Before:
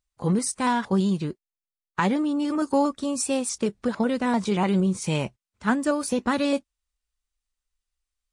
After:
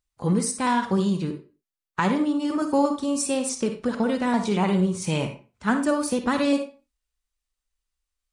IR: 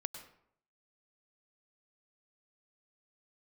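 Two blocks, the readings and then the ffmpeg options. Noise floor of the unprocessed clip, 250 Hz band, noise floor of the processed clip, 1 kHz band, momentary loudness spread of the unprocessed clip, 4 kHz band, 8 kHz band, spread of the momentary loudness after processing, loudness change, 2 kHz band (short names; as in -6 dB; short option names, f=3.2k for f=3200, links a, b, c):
under -85 dBFS, +1.0 dB, under -85 dBFS, +1.0 dB, 6 LU, +0.5 dB, +0.5 dB, 6 LU, +0.5 dB, +0.5 dB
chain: -filter_complex "[1:a]atrim=start_sample=2205,asetrate=88200,aresample=44100[a];[0:a][a]afir=irnorm=-1:irlink=0,volume=8dB"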